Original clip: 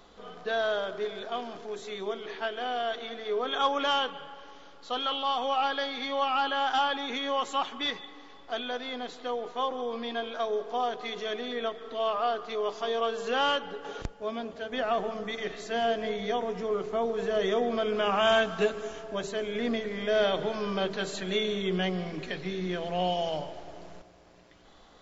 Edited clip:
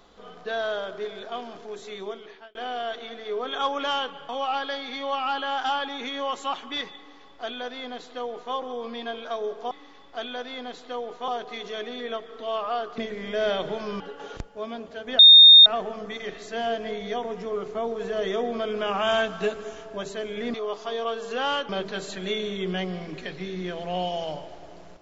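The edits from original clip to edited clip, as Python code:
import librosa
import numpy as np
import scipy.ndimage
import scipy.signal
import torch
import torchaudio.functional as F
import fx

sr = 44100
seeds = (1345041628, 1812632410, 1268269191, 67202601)

y = fx.edit(x, sr, fx.fade_out_span(start_s=2.02, length_s=0.53),
    fx.cut(start_s=4.29, length_s=1.09),
    fx.duplicate(start_s=8.06, length_s=1.57, to_s=10.8),
    fx.swap(start_s=12.5, length_s=1.15, other_s=19.72, other_length_s=1.02),
    fx.insert_tone(at_s=14.84, length_s=0.47, hz=3670.0, db=-6.5), tone=tone)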